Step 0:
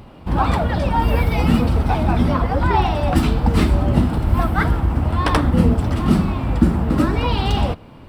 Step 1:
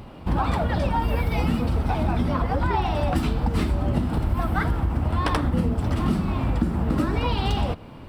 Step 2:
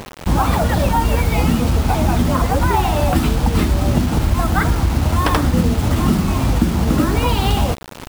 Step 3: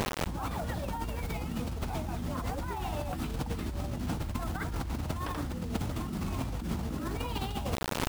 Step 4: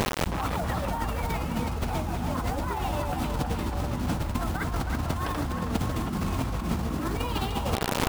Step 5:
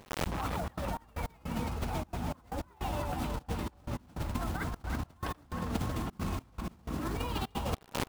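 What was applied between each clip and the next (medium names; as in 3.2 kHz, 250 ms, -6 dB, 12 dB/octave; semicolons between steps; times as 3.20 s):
compression, threshold -19 dBFS, peak gain reduction 10.5 dB
bit crusher 6-bit; trim +7 dB
compressor with a negative ratio -26 dBFS, ratio -1; trim -8 dB
band-passed feedback delay 319 ms, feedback 71%, band-pass 1.1 kHz, level -4 dB; trim +5 dB
trance gate ".xxxxxx.xx..x." 155 bpm -24 dB; trim -5.5 dB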